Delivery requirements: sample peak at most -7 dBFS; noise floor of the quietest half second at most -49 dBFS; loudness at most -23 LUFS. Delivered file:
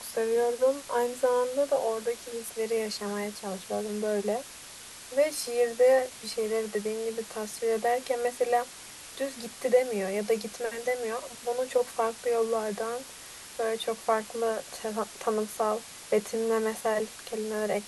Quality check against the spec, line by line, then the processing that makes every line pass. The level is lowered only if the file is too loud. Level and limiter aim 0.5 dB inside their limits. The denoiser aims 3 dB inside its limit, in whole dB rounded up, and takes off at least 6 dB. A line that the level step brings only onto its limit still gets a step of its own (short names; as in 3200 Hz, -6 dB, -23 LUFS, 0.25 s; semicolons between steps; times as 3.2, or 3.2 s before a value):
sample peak -12.0 dBFS: OK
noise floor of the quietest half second -46 dBFS: fail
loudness -29.5 LUFS: OK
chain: denoiser 6 dB, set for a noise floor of -46 dBFS